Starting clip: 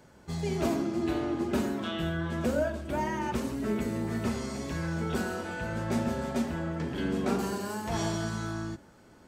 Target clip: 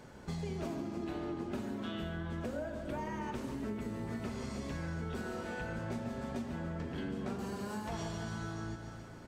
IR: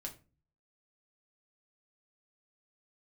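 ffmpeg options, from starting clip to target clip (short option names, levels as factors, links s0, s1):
-filter_complex "[0:a]asplit=2[s0][s1];[1:a]atrim=start_sample=2205,asetrate=57330,aresample=44100[s2];[s1][s2]afir=irnorm=-1:irlink=0,volume=0.178[s3];[s0][s3]amix=inputs=2:normalize=0,asplit=3[s4][s5][s6];[s5]asetrate=22050,aresample=44100,atempo=2,volume=0.282[s7];[s6]asetrate=55563,aresample=44100,atempo=0.793701,volume=0.126[s8];[s4][s7][s8]amix=inputs=3:normalize=0,highshelf=f=7700:g=-6,aecho=1:1:144|288|432|576|720|864:0.251|0.138|0.076|0.0418|0.023|0.0126,acompressor=threshold=0.01:ratio=5,volume=1.33"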